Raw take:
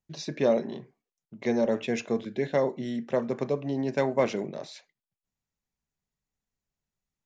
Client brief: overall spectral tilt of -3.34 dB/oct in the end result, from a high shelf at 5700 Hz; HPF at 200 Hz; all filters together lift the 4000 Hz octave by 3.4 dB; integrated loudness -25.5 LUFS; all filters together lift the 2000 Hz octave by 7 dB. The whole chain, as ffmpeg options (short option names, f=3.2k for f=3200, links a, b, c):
-af "highpass=200,equalizer=f=2k:t=o:g=8,equalizer=f=4k:t=o:g=3.5,highshelf=f=5.7k:g=-4.5,volume=3dB"